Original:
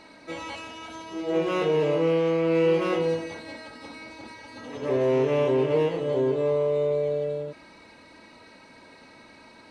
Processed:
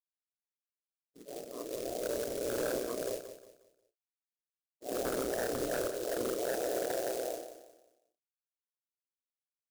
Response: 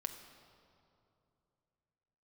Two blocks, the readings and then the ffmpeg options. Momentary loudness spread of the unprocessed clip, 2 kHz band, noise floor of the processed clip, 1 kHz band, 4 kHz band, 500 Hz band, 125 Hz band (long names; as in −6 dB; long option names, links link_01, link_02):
18 LU, −8.5 dB, below −85 dBFS, −9.5 dB, −7.0 dB, −12.0 dB, −20.5 dB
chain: -filter_complex "[0:a]afftfilt=real='re*gte(hypot(re,im),0.224)':imag='im*gte(hypot(re,im),0.224)':win_size=1024:overlap=0.75,afftfilt=real='hypot(re,im)*cos(2*PI*random(0))':imag='hypot(re,im)*sin(2*PI*random(1))':win_size=512:overlap=0.75,equalizer=frequency=150:width_type=o:width=2:gain=-14,dynaudnorm=framelen=570:gausssize=7:maxgain=14dB,flanger=delay=20:depth=3.2:speed=0.24,aresample=16000,aeval=exprs='0.119*(abs(mod(val(0)/0.119+3,4)-2)-1)':channel_layout=same,aresample=44100,aeval=exprs='val(0)*sin(2*PI*61*n/s)':channel_layout=same,acrusher=bits=3:mode=log:mix=0:aa=0.000001,bass=frequency=250:gain=1,treble=frequency=4000:gain=10,asplit=2[link_01][link_02];[link_02]adelay=34,volume=-12dB[link_03];[link_01][link_03]amix=inputs=2:normalize=0,aecho=1:1:179|358|537|716:0.282|0.0958|0.0326|0.0111,volume=-8dB"